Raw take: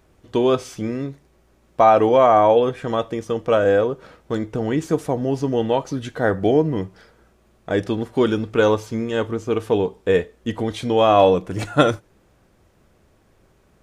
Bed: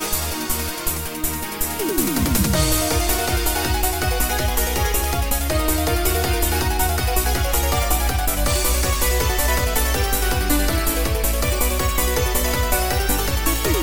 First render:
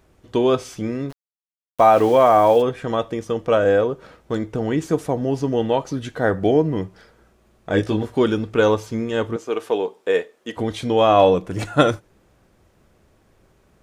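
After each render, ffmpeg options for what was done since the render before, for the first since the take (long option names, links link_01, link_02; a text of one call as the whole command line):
ffmpeg -i in.wav -filter_complex "[0:a]asplit=3[link_01][link_02][link_03];[link_01]afade=type=out:start_time=1.09:duration=0.02[link_04];[link_02]aeval=exprs='val(0)*gte(abs(val(0)),0.0282)':channel_layout=same,afade=type=in:start_time=1.09:duration=0.02,afade=type=out:start_time=2.61:duration=0.02[link_05];[link_03]afade=type=in:start_time=2.61:duration=0.02[link_06];[link_04][link_05][link_06]amix=inputs=3:normalize=0,asettb=1/sr,asplit=3[link_07][link_08][link_09];[link_07]atrim=end=7.714[link_10];[link_08]atrim=start=7.71:end=8.15,asetpts=PTS-STARTPTS,afade=type=in:duration=0.004:curve=qsin,afade=type=out:start_time=0.436:duration=0.004:curve=qsin,asplit=2[link_11][link_12];[link_12]adelay=19,volume=-2.5dB[link_13];[link_11][link_13]amix=inputs=2:normalize=0,atrim=end_sample=19404[link_14];[link_09]atrim=start=8.146[link_15];[link_10][link_14]acrossfade=duration=0.004:curve1=hsin:curve2=qsin[link_16];[link_16][link_15]acrossfade=duration=0.004:curve1=qsin:curve2=hsin,asettb=1/sr,asplit=3[link_17][link_18][link_19];[link_17]atrim=end=9.364[link_20];[link_18]atrim=start=9.36:end=10.57,asetpts=PTS-STARTPTS,afade=type=in:duration=0.004:curve=qsin,afade=type=out:start_time=1.206:duration=0.004:curve=qsin,highpass=380[link_21];[link_19]atrim=start=10.566[link_22];[link_20][link_21]acrossfade=duration=0.004:curve1=hsin:curve2=qsin[link_23];[link_23][link_22]acrossfade=duration=0.004:curve1=qsin:curve2=hsin" out.wav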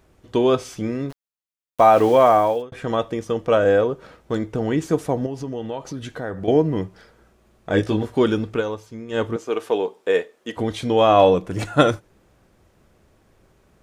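ffmpeg -i in.wav -filter_complex "[0:a]asettb=1/sr,asplit=3[link_01][link_02][link_03];[link_01]atrim=end=5.264[link_04];[link_02]atrim=start=5.26:end=6.48,asetpts=PTS-STARTPTS,afade=type=in:duration=0.004:curve=qsin,afade=type=out:start_time=1.216:duration=0.004:curve=qsin,acompressor=threshold=-29dB:ratio=2.5:attack=3.2:release=140:knee=1:detection=peak[link_05];[link_03]atrim=start=6.476[link_06];[link_04][link_05]acrossfade=duration=0.004:curve1=hsin:curve2=qsin[link_07];[link_07][link_06]acrossfade=duration=0.004:curve1=qsin:curve2=hsin,asplit=4[link_08][link_09][link_10][link_11];[link_08]atrim=end=2.72,asetpts=PTS-STARTPTS,afade=type=out:start_time=2.29:duration=0.43[link_12];[link_09]atrim=start=2.72:end=8.63,asetpts=PTS-STARTPTS,afade=type=in:duration=0.004:curve=hsin,afade=type=out:start_time=5.77:duration=0.14:curve=qsin:silence=0.298538[link_13];[link_10]atrim=start=8.63:end=9.08,asetpts=PTS-STARTPTS,volume=-10.5dB[link_14];[link_11]atrim=start=9.08,asetpts=PTS-STARTPTS,afade=type=in:duration=0.14:curve=qsin:silence=0.298538[link_15];[link_12][link_13][link_14][link_15]concat=n=4:v=0:a=1" out.wav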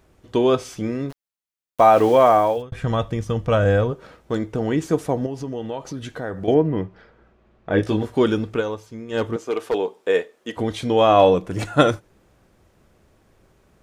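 ffmpeg -i in.wav -filter_complex "[0:a]asplit=3[link_01][link_02][link_03];[link_01]afade=type=out:start_time=2.56:duration=0.02[link_04];[link_02]asubboost=boost=8:cutoff=130,afade=type=in:start_time=2.56:duration=0.02,afade=type=out:start_time=3.91:duration=0.02[link_05];[link_03]afade=type=in:start_time=3.91:duration=0.02[link_06];[link_04][link_05][link_06]amix=inputs=3:normalize=0,asettb=1/sr,asplit=3[link_07][link_08][link_09];[link_07]atrim=end=6.544[link_10];[link_08]atrim=start=6.54:end=7.83,asetpts=PTS-STARTPTS,afade=type=in:duration=0.004:curve=qsin,afade=type=out:start_time=1.286:duration=0.004:curve=qsin,lowpass=2900[link_11];[link_09]atrim=start=7.826[link_12];[link_10][link_11]acrossfade=duration=0.004:curve1=hsin:curve2=qsin[link_13];[link_13][link_12]acrossfade=duration=0.004:curve1=qsin:curve2=hsin,asettb=1/sr,asplit=3[link_14][link_15][link_16];[link_14]atrim=end=9.174[link_17];[link_15]atrim=start=9.17:end=9.75,asetpts=PTS-STARTPTS,afade=type=in:duration=0.004:curve=qsin,afade=type=out:start_time=0.576:duration=0.004:curve=qsin,asoftclip=type=hard:threshold=-15.5dB[link_18];[link_16]atrim=start=9.746[link_19];[link_17][link_18]acrossfade=duration=0.004:curve1=hsin:curve2=qsin[link_20];[link_20][link_19]acrossfade=duration=0.004:curve1=qsin:curve2=hsin" out.wav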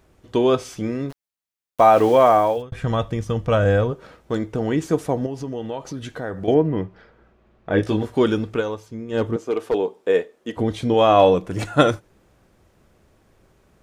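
ffmpeg -i in.wav -filter_complex "[0:a]asettb=1/sr,asplit=3[link_01][link_02][link_03];[link_01]atrim=end=8.884[link_04];[link_02]atrim=start=8.88:end=10.94,asetpts=PTS-STARTPTS,afade=type=in:duration=0.004:curve=qsin,afade=type=out:start_time=2.056:duration=0.004:curve=qsin,tiltshelf=frequency=640:gain=3.5[link_05];[link_03]atrim=start=10.936[link_06];[link_04][link_05]acrossfade=duration=0.004:curve1=hsin:curve2=qsin[link_07];[link_07][link_06]acrossfade=duration=0.004:curve1=qsin:curve2=hsin" out.wav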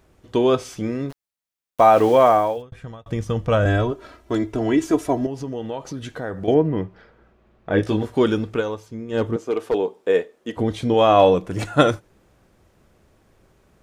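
ffmpeg -i in.wav -filter_complex "[0:a]asettb=1/sr,asplit=3[link_01][link_02][link_03];[link_01]atrim=end=3.654[link_04];[link_02]atrim=start=3.65:end=5.27,asetpts=PTS-STARTPTS,afade=type=in:duration=0.004:curve=qsin,afade=type=out:start_time=1.616:duration=0.004:curve=qsin,aecho=1:1:3:0.82,atrim=end_sample=71442[link_05];[link_03]atrim=start=5.266[link_06];[link_04][link_05]acrossfade=duration=0.004:curve1=hsin:curve2=qsin[link_07];[link_07][link_06]acrossfade=duration=0.004:curve1=qsin:curve2=hsin,asplit=2[link_08][link_09];[link_08]atrim=end=3.06,asetpts=PTS-STARTPTS,afade=type=out:start_time=2.27:duration=0.79[link_10];[link_09]atrim=start=3.06,asetpts=PTS-STARTPTS,afade=type=in:duration=0.004:curve=hsin[link_11];[link_10][link_11]concat=n=2:v=0:a=1" out.wav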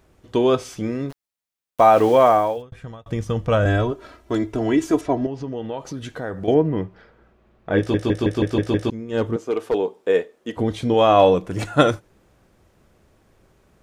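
ffmpeg -i in.wav -filter_complex "[0:a]asettb=1/sr,asplit=3[link_01][link_02][link_03];[link_01]atrim=end=5.014[link_04];[link_02]atrim=start=5.01:end=5.78,asetpts=PTS-STARTPTS,afade=type=in:duration=0.004:curve=qsin,afade=type=out:start_time=0.766:duration=0.004:curve=qsin,lowpass=4500[link_05];[link_03]atrim=start=5.776[link_06];[link_04][link_05]acrossfade=duration=0.004:curve1=hsin:curve2=qsin[link_07];[link_07][link_06]acrossfade=duration=0.004:curve1=qsin:curve2=hsin,asplit=8[link_08][link_09][link_10][link_11][link_12][link_13][link_14][link_15];[link_08]atrim=end=7.942[link_16];[link_09]atrim=start=7.778:end=7.942[link_17];[link_10]atrim=start=7.778:end=7.942[link_18];[link_11]atrim=start=7.778:end=7.942[link_19];[link_12]atrim=start=7.778:end=7.942[link_20];[link_13]atrim=start=7.778:end=7.942[link_21];[link_14]atrim=start=7.778:end=7.942[link_22];[link_15]atrim=start=8.898[link_23];[link_16][link_17]acrossfade=duration=0.004:curve1=hsin:curve2=hsin[link_24];[link_24][link_18]acrossfade=duration=0.004:curve1=hsin:curve2=hsin[link_25];[link_25][link_19]acrossfade=duration=0.004:curve1=hsin:curve2=hsin[link_26];[link_26][link_20]acrossfade=duration=0.004:curve1=hsin:curve2=hsin[link_27];[link_27][link_21]acrossfade=duration=0.004:curve1=hsin:curve2=hsin[link_28];[link_28][link_22]acrossfade=duration=0.004:curve1=hsin:curve2=hsin[link_29];[link_29][link_23]acrossfade=duration=0.004:curve1=hsin:curve2=hsin" out.wav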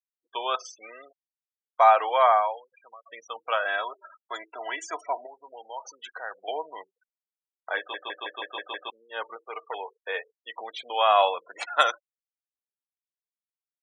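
ffmpeg -i in.wav -af "afftfilt=real='re*gte(hypot(re,im),0.0224)':imag='im*gte(hypot(re,im),0.0224)':win_size=1024:overlap=0.75,highpass=frequency=780:width=0.5412,highpass=frequency=780:width=1.3066" out.wav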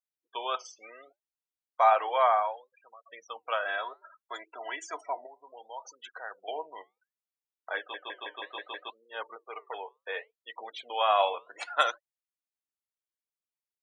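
ffmpeg -i in.wav -af "flanger=delay=0.6:depth=7.7:regen=-82:speed=0.66:shape=triangular" out.wav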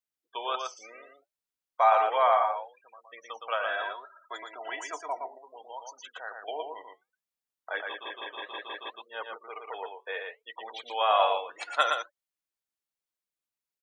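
ffmpeg -i in.wav -af "aecho=1:1:116:0.596" out.wav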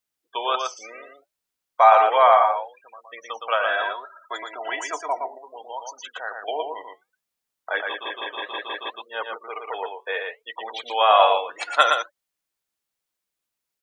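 ffmpeg -i in.wav -af "volume=8dB" out.wav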